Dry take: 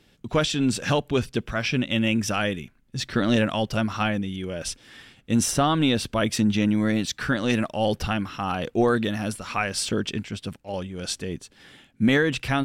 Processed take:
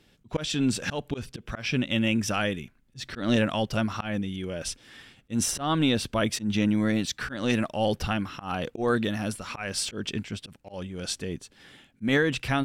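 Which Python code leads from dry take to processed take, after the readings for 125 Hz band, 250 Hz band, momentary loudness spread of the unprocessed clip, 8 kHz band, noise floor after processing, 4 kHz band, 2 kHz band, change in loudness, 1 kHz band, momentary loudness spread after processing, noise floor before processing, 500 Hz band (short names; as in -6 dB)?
-3.5 dB, -3.5 dB, 11 LU, -2.0 dB, -63 dBFS, -3.0 dB, -3.0 dB, -3.5 dB, -4.5 dB, 13 LU, -61 dBFS, -4.0 dB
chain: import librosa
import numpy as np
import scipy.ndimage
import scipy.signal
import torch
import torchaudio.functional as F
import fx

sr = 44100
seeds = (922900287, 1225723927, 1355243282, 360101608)

y = fx.auto_swell(x, sr, attack_ms=143.0)
y = y * 10.0 ** (-2.0 / 20.0)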